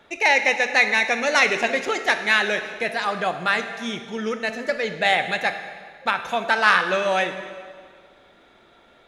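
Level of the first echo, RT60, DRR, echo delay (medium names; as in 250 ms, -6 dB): no echo, 1.9 s, 8.0 dB, no echo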